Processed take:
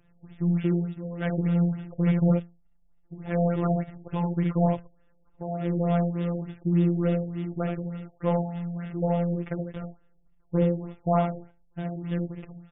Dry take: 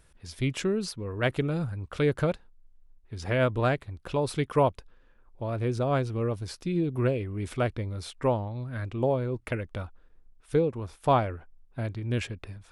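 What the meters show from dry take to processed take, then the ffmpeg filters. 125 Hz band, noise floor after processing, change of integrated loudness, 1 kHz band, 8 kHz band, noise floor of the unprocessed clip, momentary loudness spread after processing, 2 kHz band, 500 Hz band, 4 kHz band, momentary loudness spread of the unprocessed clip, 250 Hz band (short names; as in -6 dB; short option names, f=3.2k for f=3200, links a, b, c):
+3.0 dB, -61 dBFS, +2.0 dB, -2.0 dB, under -35 dB, -59 dBFS, 12 LU, -7.5 dB, -2.0 dB, under -10 dB, 12 LU, +6.0 dB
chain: -af "highpass=49,deesser=0.85,lowshelf=f=420:g=10,bandreject=f=1.1k:w=18,flanger=delay=6.1:depth=2.9:regen=87:speed=0.4:shape=triangular,aresample=11025,acrusher=bits=5:mode=log:mix=0:aa=0.000001,aresample=44100,volume=14.5dB,asoftclip=hard,volume=-14.5dB,afftfilt=real='hypot(re,im)*cos(PI*b)':imag='0':win_size=1024:overlap=0.75,aecho=1:1:57|74:0.316|0.631,afftfilt=real='re*lt(b*sr/1024,810*pow(3800/810,0.5+0.5*sin(2*PI*3.4*pts/sr)))':imag='im*lt(b*sr/1024,810*pow(3800/810,0.5+0.5*sin(2*PI*3.4*pts/sr)))':win_size=1024:overlap=0.75,volume=2dB"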